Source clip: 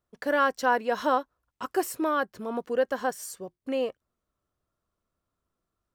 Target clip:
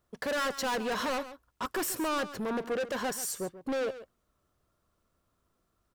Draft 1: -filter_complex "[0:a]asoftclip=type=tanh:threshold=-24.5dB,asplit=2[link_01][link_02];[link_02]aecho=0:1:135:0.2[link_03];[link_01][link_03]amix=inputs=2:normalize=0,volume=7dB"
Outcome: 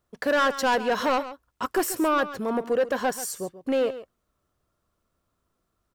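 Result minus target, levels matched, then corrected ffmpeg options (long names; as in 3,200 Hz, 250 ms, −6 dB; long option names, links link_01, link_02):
soft clipping: distortion −6 dB
-filter_complex "[0:a]asoftclip=type=tanh:threshold=-36dB,asplit=2[link_01][link_02];[link_02]aecho=0:1:135:0.2[link_03];[link_01][link_03]amix=inputs=2:normalize=0,volume=7dB"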